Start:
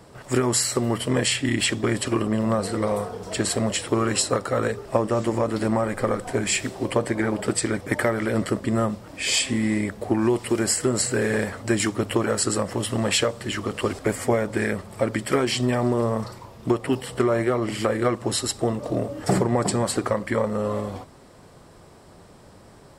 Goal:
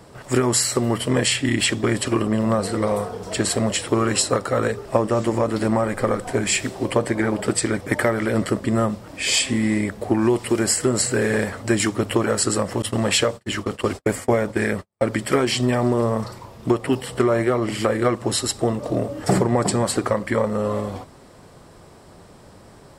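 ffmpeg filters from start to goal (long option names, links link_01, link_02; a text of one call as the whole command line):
ffmpeg -i in.wav -filter_complex "[0:a]asettb=1/sr,asplit=3[link_01][link_02][link_03];[link_01]atrim=end=12.824[link_04];[link_02]atrim=start=12.82:end=15.06,asetpts=PTS-STARTPTS,afade=type=in:duration=0.004:curve=qsin,afade=type=out:start_time=2.236:duration=0.004:curve=qsin,agate=range=-48dB:threshold=-29dB:ratio=16:detection=peak[link_05];[link_03]atrim=start=15.056[link_06];[link_04][link_05]acrossfade=duration=0.004:curve1=hsin:curve2=qsin[link_07];[link_07][link_06]acrossfade=duration=0.004:curve1=qsin:curve2=hsin,volume=2.5dB" out.wav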